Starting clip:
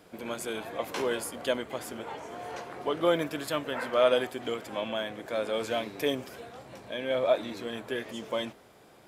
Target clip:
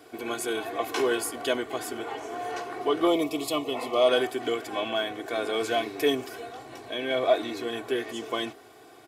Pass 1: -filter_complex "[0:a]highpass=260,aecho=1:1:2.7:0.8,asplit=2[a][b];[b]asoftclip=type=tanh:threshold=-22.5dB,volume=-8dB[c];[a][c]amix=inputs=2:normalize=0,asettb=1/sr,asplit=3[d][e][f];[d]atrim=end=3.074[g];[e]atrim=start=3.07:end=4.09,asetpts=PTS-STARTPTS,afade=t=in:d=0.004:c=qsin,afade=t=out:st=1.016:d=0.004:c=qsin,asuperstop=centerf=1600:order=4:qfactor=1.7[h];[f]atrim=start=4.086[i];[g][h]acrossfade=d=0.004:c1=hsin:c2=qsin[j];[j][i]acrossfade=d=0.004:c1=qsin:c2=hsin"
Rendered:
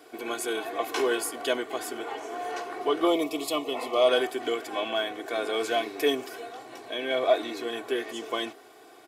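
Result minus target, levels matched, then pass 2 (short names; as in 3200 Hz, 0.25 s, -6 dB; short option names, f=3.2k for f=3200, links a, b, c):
125 Hz band -8.5 dB
-filter_complex "[0:a]highpass=120,aecho=1:1:2.7:0.8,asplit=2[a][b];[b]asoftclip=type=tanh:threshold=-22.5dB,volume=-8dB[c];[a][c]amix=inputs=2:normalize=0,asettb=1/sr,asplit=3[d][e][f];[d]atrim=end=3.074[g];[e]atrim=start=3.07:end=4.09,asetpts=PTS-STARTPTS,afade=t=in:d=0.004:c=qsin,afade=t=out:st=1.016:d=0.004:c=qsin,asuperstop=centerf=1600:order=4:qfactor=1.7[h];[f]atrim=start=4.086[i];[g][h]acrossfade=d=0.004:c1=hsin:c2=qsin[j];[j][i]acrossfade=d=0.004:c1=qsin:c2=hsin"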